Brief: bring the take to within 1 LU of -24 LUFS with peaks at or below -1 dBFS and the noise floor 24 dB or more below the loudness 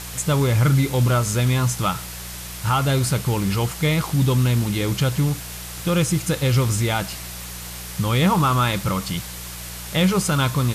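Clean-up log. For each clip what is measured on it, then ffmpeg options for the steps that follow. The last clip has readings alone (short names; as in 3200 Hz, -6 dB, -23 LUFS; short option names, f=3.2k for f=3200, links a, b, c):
hum 60 Hz; harmonics up to 180 Hz; hum level -36 dBFS; noise floor -34 dBFS; noise floor target -45 dBFS; loudness -21.0 LUFS; peak -7.5 dBFS; loudness target -24.0 LUFS
-> -af "bandreject=f=60:t=h:w=4,bandreject=f=120:t=h:w=4,bandreject=f=180:t=h:w=4"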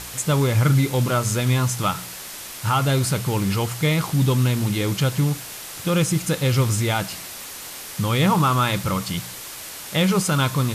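hum none; noise floor -36 dBFS; noise floor target -46 dBFS
-> -af "afftdn=nr=10:nf=-36"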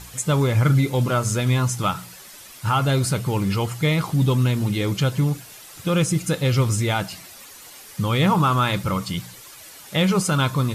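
noise floor -43 dBFS; noise floor target -46 dBFS
-> -af "afftdn=nr=6:nf=-43"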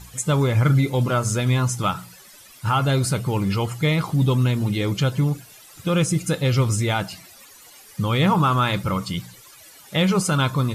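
noise floor -47 dBFS; loudness -21.5 LUFS; peak -7.0 dBFS; loudness target -24.0 LUFS
-> -af "volume=-2.5dB"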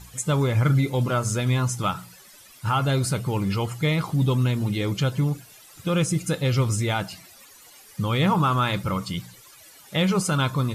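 loudness -24.0 LUFS; peak -9.5 dBFS; noise floor -50 dBFS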